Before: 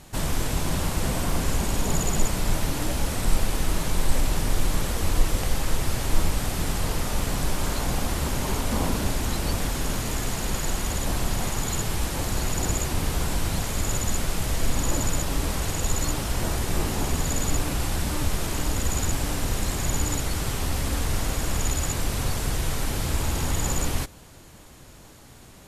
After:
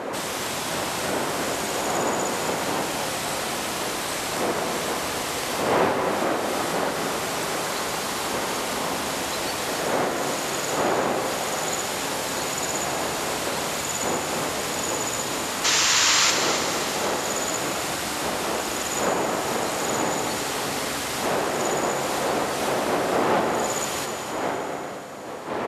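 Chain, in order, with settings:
wind on the microphone 550 Hz −20 dBFS
meter weighting curve A
downward compressor 3 to 1, threshold −27 dBFS, peak gain reduction 16.5 dB
sound drawn into the spectrogram noise, 0:15.64–0:16.31, 870–7,600 Hz −24 dBFS
slap from a distant wall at 45 metres, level −6 dB
on a send at −5.5 dB: convolution reverb RT60 3.9 s, pre-delay 44 ms
on the sum: level +3 dB

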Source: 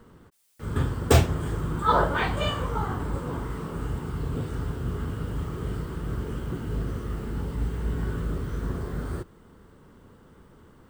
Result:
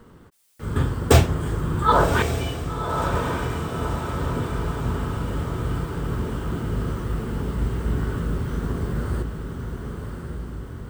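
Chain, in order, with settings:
0:02.22–0:03.14: formant filter i
feedback delay with all-pass diffusion 1,100 ms, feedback 57%, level −6 dB
level +3.5 dB

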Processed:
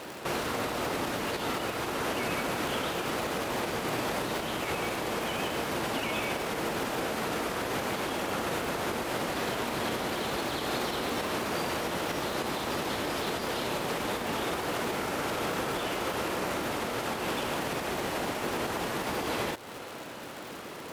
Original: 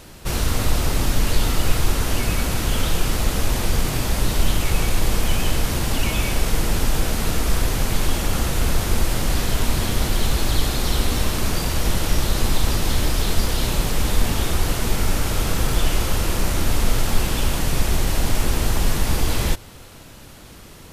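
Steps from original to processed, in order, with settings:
high-shelf EQ 2,400 Hz −7.5 dB
downward compressor 4 to 1, threshold −23 dBFS, peak gain reduction 12 dB
high-pass filter 150 Hz 12 dB per octave
bass and treble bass −11 dB, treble −6 dB
brickwall limiter −29.5 dBFS, peak gain reduction 6 dB
surface crackle 190 per second −42 dBFS
level +7.5 dB

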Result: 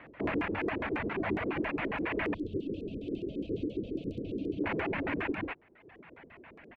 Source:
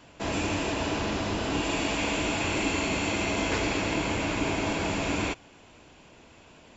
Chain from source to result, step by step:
stylus tracing distortion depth 0.17 ms
high-pass filter 110 Hz 6 dB per octave
parametric band 5,700 Hz +6 dB 1.7 octaves
sample-rate reduction 5,200 Hz, jitter 0%
single-tap delay 198 ms −5.5 dB
brickwall limiter −23.5 dBFS, peak gain reduction 9 dB
high-frequency loss of the air 200 metres
auto-filter low-pass square 7.3 Hz 400–2,000 Hz
0:02.34–0:04.64: inverse Chebyshev band-stop filter 850–2,000 Hz, stop band 50 dB
reverb reduction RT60 1.1 s

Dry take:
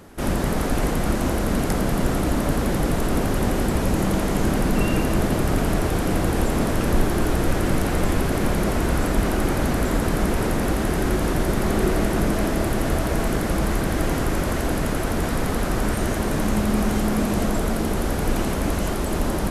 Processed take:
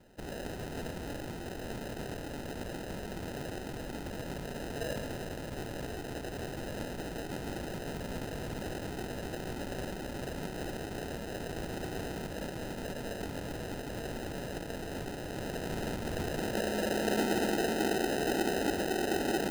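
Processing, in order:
band-pass filter sweep 2,300 Hz → 400 Hz, 0:15.27–0:17.24
decimation without filtering 39×

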